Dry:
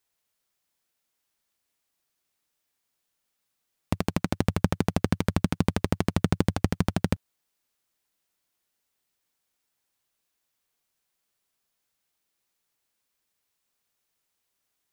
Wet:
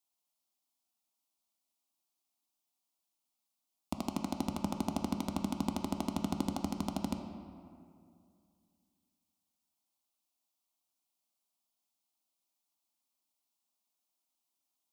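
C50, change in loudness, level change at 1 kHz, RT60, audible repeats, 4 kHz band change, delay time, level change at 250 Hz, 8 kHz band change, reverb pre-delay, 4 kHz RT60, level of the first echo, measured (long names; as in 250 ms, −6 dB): 6.5 dB, −9.5 dB, −5.5 dB, 2.4 s, no echo audible, −7.5 dB, no echo audible, −7.0 dB, −6.0 dB, 11 ms, 1.3 s, no echo audible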